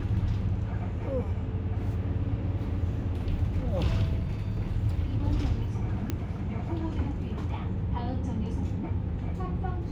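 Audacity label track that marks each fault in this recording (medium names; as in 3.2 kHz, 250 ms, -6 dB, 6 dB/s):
6.100000	6.100000	pop -16 dBFS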